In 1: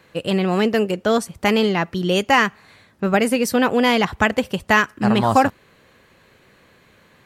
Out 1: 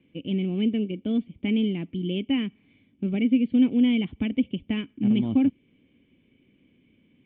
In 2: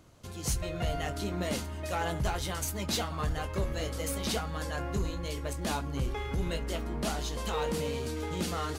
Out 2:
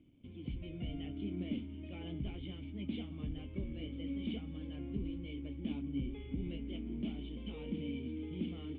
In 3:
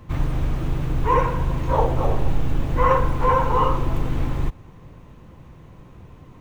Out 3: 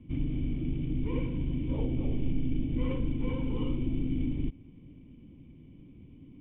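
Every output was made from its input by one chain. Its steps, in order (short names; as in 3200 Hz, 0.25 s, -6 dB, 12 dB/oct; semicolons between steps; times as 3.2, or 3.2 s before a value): in parallel at -8 dB: companded quantiser 4-bit; on the sum: vocal tract filter i; dynamic EQ 1100 Hz, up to -3 dB, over -43 dBFS, Q 0.81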